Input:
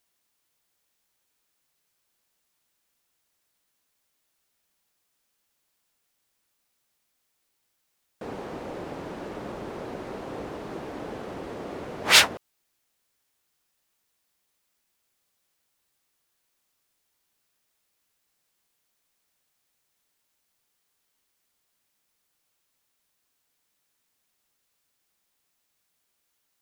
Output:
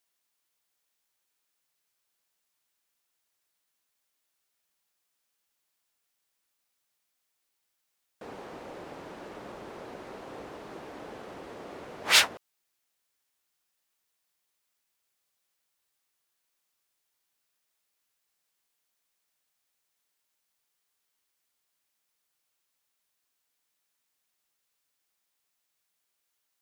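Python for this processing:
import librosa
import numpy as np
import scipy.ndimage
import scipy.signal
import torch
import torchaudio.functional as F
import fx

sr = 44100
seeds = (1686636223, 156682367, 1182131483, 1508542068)

y = fx.low_shelf(x, sr, hz=410.0, db=-7.0)
y = y * librosa.db_to_amplitude(-4.0)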